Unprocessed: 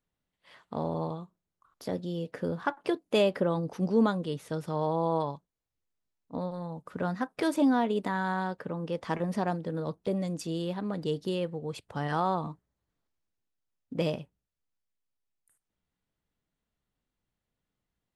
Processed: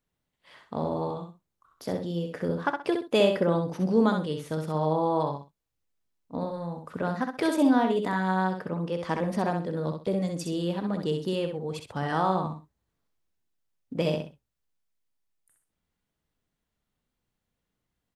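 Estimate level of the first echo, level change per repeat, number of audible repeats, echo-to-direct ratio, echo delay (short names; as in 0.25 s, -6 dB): -5.5 dB, -12.5 dB, 2, -5.5 dB, 64 ms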